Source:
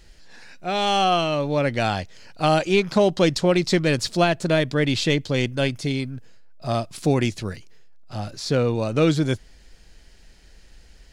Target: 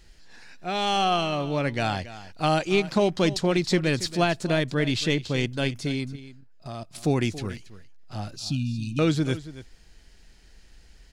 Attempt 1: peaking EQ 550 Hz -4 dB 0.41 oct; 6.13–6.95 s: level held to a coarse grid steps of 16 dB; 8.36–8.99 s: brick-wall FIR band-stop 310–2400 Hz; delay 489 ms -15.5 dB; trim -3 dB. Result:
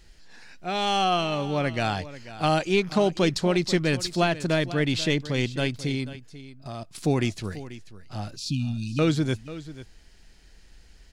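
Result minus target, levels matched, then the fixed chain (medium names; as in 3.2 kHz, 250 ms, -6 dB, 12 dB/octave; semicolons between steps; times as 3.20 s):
echo 211 ms late
peaking EQ 550 Hz -4 dB 0.41 oct; 6.13–6.95 s: level held to a coarse grid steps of 16 dB; 8.36–8.99 s: brick-wall FIR band-stop 310–2400 Hz; delay 278 ms -15.5 dB; trim -3 dB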